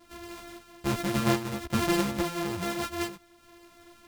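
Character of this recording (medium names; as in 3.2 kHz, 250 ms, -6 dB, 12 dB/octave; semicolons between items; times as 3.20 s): a buzz of ramps at a fixed pitch in blocks of 128 samples; random-step tremolo; a shimmering, thickened sound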